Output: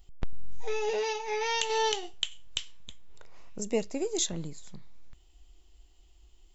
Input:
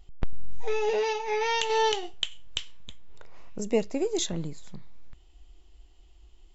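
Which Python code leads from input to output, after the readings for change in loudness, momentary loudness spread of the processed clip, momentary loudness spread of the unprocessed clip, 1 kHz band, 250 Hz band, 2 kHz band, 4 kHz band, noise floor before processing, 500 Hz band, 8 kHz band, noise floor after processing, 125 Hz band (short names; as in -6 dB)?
-2.5 dB, 16 LU, 15 LU, -4.0 dB, -4.0 dB, -2.5 dB, -1.0 dB, -55 dBFS, -4.0 dB, n/a, -59 dBFS, -4.0 dB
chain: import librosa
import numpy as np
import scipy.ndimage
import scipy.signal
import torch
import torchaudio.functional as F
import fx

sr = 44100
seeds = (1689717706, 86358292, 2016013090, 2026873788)

y = fx.high_shelf(x, sr, hz=5900.0, db=11.5)
y = y * 10.0 ** (-4.0 / 20.0)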